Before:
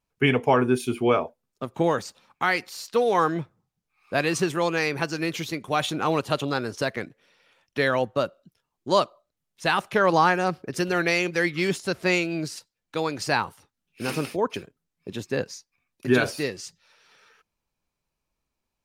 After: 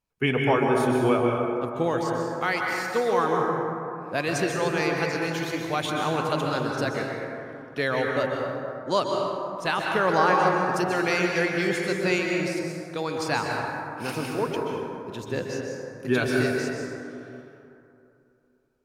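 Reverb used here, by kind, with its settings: plate-style reverb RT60 2.8 s, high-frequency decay 0.35×, pre-delay 115 ms, DRR -0.5 dB; trim -3.5 dB

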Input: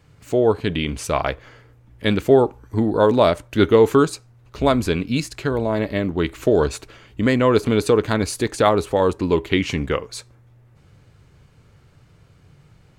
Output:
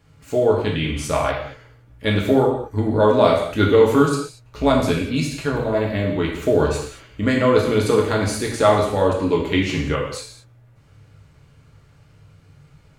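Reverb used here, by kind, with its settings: gated-style reverb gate 260 ms falling, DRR -2.5 dB; trim -3.5 dB

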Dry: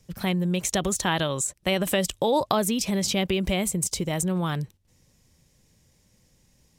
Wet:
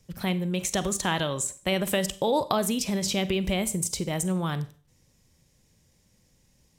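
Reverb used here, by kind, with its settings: Schroeder reverb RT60 0.42 s, combs from 32 ms, DRR 13.5 dB; trim -2 dB

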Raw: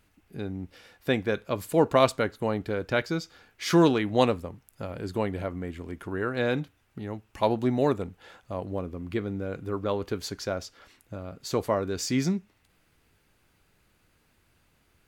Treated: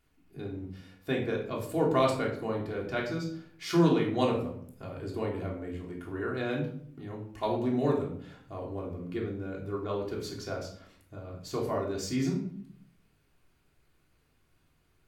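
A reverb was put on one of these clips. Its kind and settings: simulated room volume 880 m³, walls furnished, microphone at 3.3 m; trim -9.5 dB

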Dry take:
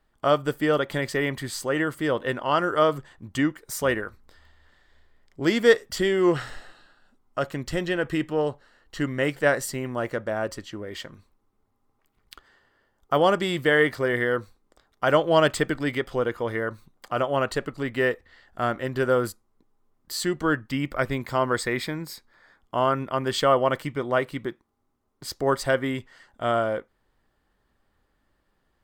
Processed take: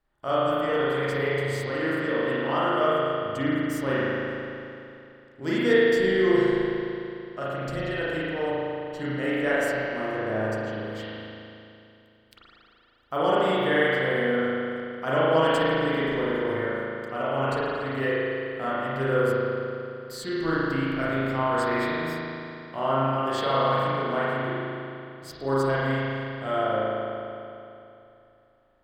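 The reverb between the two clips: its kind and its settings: spring tank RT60 2.8 s, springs 37 ms, chirp 20 ms, DRR -9.5 dB; trim -10 dB

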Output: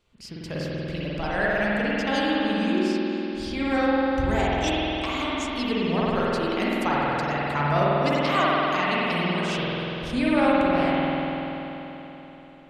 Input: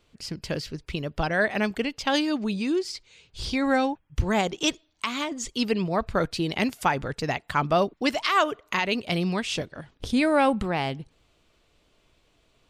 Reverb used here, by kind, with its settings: spring tank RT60 3.8 s, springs 48 ms, chirp 50 ms, DRR -7.5 dB; trim -6 dB

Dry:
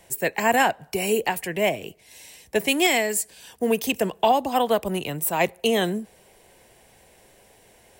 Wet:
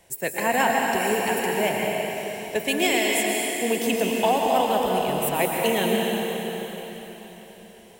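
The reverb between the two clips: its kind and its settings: plate-style reverb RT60 4.2 s, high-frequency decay 1×, pre-delay 100 ms, DRR -2 dB; trim -3.5 dB

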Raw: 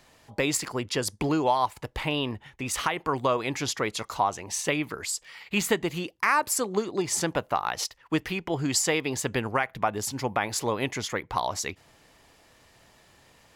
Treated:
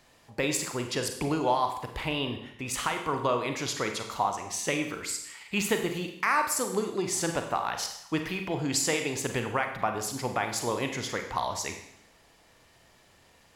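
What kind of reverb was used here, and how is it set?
Schroeder reverb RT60 0.75 s, combs from 33 ms, DRR 5 dB; trim -3 dB

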